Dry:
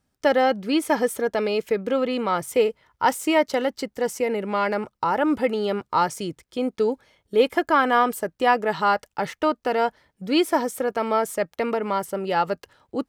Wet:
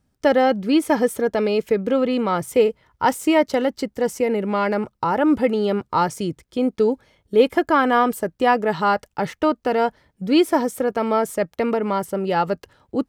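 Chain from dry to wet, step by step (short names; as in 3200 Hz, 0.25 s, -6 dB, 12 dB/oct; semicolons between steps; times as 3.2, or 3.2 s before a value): low shelf 380 Hz +8 dB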